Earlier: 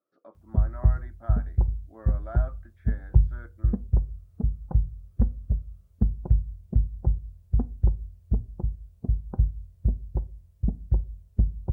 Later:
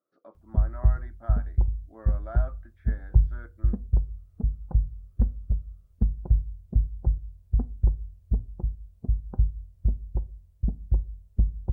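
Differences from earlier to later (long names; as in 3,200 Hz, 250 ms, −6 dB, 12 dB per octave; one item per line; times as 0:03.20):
background −3.5 dB
master: remove high-pass filter 57 Hz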